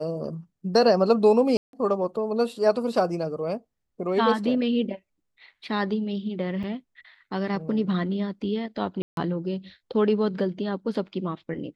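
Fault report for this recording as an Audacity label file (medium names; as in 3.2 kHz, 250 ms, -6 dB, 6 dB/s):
1.570000	1.730000	dropout 162 ms
6.630000	6.640000	dropout 5.3 ms
9.020000	9.170000	dropout 152 ms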